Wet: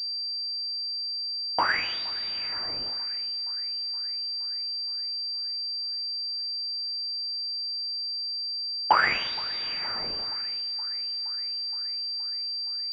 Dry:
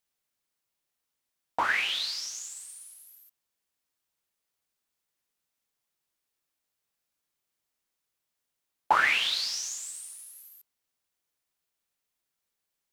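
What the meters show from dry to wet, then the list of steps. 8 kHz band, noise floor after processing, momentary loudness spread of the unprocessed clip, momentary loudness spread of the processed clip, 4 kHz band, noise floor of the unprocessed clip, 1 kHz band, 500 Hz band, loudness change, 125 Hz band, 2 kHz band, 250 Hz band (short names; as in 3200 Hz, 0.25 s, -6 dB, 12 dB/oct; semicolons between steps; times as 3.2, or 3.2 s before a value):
under -20 dB, -32 dBFS, 21 LU, 4 LU, +10.0 dB, -84 dBFS, +3.0 dB, +4.0 dB, -0.5 dB, n/a, 0.0 dB, +6.5 dB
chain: thinning echo 0.47 s, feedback 74%, level -21 dB; pulse-width modulation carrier 4700 Hz; gain +3 dB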